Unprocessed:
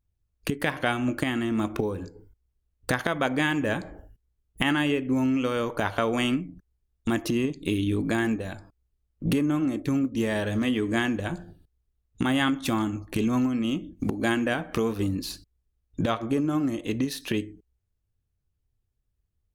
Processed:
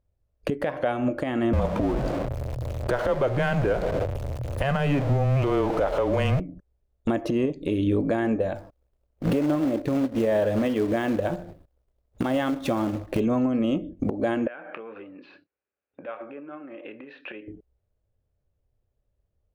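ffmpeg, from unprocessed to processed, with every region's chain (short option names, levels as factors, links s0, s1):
-filter_complex "[0:a]asettb=1/sr,asplit=3[s0][s1][s2];[s0]atrim=end=1.534[s3];[s1]atrim=start=1.53:end=6.4,asetpts=PTS-STARTPTS,afade=t=in:d=0.004:c=qsin,afade=t=out:st=4.866:d=0.004:c=qsin,aeval=exprs='val(0)+0.5*0.0447*sgn(val(0))':c=same,afreqshift=-140[s4];[s2]atrim=start=6.396[s5];[s3][s4]acrossfade=d=0.004:c1=hsin:c2=qsin[s6];[s6][s5]acrossfade=d=0.004:c1=qsin:c2=hsin,asettb=1/sr,asplit=3[s7][s8][s9];[s7]atrim=end=8.554[s10];[s8]atrim=start=8.55:end=13.2,asetpts=PTS-STARTPTS,afade=t=in:d=0.004:c=qsin,afade=t=out:st=4.646:d=0.004:c=qsin,acrusher=bits=3:mode=log:mix=0:aa=0.000001,highshelf=f=11000:g=8.5[s11];[s9]atrim=start=13.196[s12];[s10][s11]acrossfade=d=0.004:c1=hsin:c2=qsin[s13];[s13][s12]acrossfade=d=0.004:c1=qsin:c2=hsin,asettb=1/sr,asplit=3[s14][s15][s16];[s14]atrim=end=14.474[s17];[s15]atrim=start=14.47:end=17.48,asetpts=PTS-STARTPTS,afade=t=in:d=0.004:c=qsin,afade=t=out:st=3.006:d=0.004:c=qsin,acompressor=threshold=0.0178:ratio=8:attack=3.2:release=140:knee=1:detection=peak,highpass=440,equalizer=f=450:t=q:w=4:g=-5,equalizer=f=650:t=q:w=4:g=-9,equalizer=f=1000:t=q:w=4:g=-3,equalizer=f=1500:t=q:w=4:g=7,equalizer=f=2500:t=q:w=4:g=8,lowpass=f=2700:w=0.5412,lowpass=f=2700:w=1.3066,asplit=2[s18][s19];[s19]adelay=28,volume=0.224[s20];[s18][s20]amix=inputs=2:normalize=0,atrim=end_sample=132741[s21];[s16]atrim=start=17.476[s22];[s17][s21]acrossfade=d=0.004:c1=hsin:c2=qsin[s23];[s23][s22]acrossfade=d=0.004:c1=qsin:c2=hsin,lowpass=f=1900:p=1,equalizer=f=570:w=1.9:g=14,alimiter=limit=0.141:level=0:latency=1:release=225,volume=1.33"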